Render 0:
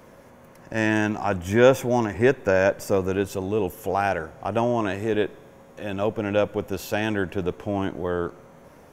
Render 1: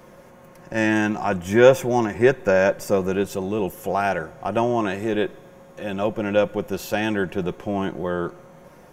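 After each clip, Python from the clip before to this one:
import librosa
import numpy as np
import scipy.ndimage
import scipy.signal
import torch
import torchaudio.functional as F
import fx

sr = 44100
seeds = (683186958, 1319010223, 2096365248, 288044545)

y = x + 0.44 * np.pad(x, (int(5.6 * sr / 1000.0), 0))[:len(x)]
y = y * librosa.db_to_amplitude(1.0)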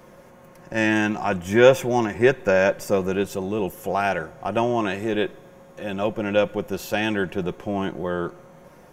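y = fx.dynamic_eq(x, sr, hz=2900.0, q=1.1, threshold_db=-36.0, ratio=4.0, max_db=4)
y = y * librosa.db_to_amplitude(-1.0)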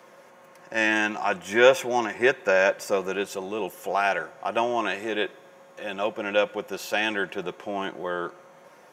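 y = fx.weighting(x, sr, curve='A')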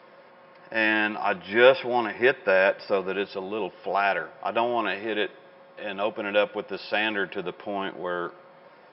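y = fx.brickwall_lowpass(x, sr, high_hz=5400.0)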